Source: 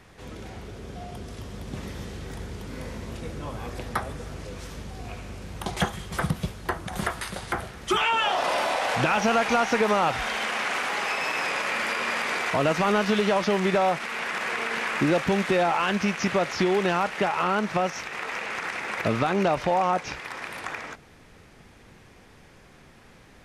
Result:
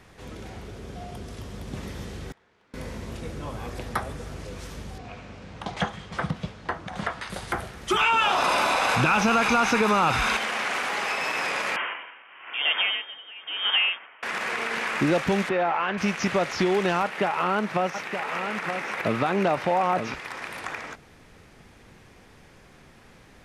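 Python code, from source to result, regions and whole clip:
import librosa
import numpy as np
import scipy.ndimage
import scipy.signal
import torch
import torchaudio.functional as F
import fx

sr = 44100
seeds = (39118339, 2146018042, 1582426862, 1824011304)

y = fx.chain(x, sr, fx.lowpass(hz=1500.0, slope=12),
    fx.differentiator(),
    fx.doppler_dist(depth_ms=0.13), at=(2.32, 2.74))
y = fx.chain(y, sr, fx.highpass(hz=140.0, slope=6),
    fx.air_absorb(metres=110.0),
    fx.notch(hz=370.0, q=7.8), at=(4.98, 7.3))
y = fx.chain(y, sr, fx.comb(ms=0.8, depth=0.43),
    fx.env_flatten(amount_pct=50), at=(7.99, 10.37))
y = fx.chain(y, sr, fx.freq_invert(carrier_hz=3400),
    fx.highpass(hz=330.0, slope=12),
    fx.tremolo_db(hz=1.0, depth_db=22), at=(11.76, 14.23))
y = fx.chain(y, sr, fx.lowpass(hz=2300.0, slope=12),
    fx.low_shelf(hz=260.0, db=-9.0), at=(15.49, 15.98))
y = fx.chain(y, sr, fx.highpass(hz=120.0, slope=12),
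    fx.peak_eq(hz=6300.0, db=-5.0, octaves=1.2),
    fx.echo_single(ms=921, db=-7.5), at=(17.02, 20.14))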